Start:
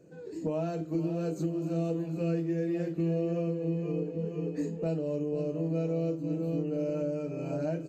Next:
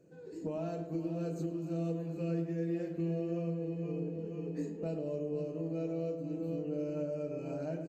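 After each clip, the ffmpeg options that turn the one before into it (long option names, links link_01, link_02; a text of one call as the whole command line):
ffmpeg -i in.wav -filter_complex "[0:a]asplit=2[link_01][link_02];[link_02]adelay=107,lowpass=frequency=1500:poles=1,volume=-6.5dB,asplit=2[link_03][link_04];[link_04]adelay=107,lowpass=frequency=1500:poles=1,volume=0.54,asplit=2[link_05][link_06];[link_06]adelay=107,lowpass=frequency=1500:poles=1,volume=0.54,asplit=2[link_07][link_08];[link_08]adelay=107,lowpass=frequency=1500:poles=1,volume=0.54,asplit=2[link_09][link_10];[link_10]adelay=107,lowpass=frequency=1500:poles=1,volume=0.54,asplit=2[link_11][link_12];[link_12]adelay=107,lowpass=frequency=1500:poles=1,volume=0.54,asplit=2[link_13][link_14];[link_14]adelay=107,lowpass=frequency=1500:poles=1,volume=0.54[link_15];[link_01][link_03][link_05][link_07][link_09][link_11][link_13][link_15]amix=inputs=8:normalize=0,volume=-6dB" out.wav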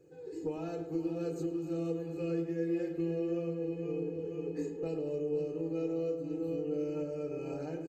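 ffmpeg -i in.wav -af "aecho=1:1:2.4:0.75" out.wav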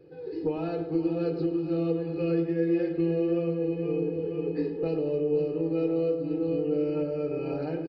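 ffmpeg -i in.wav -af "aresample=11025,aresample=44100,volume=7.5dB" out.wav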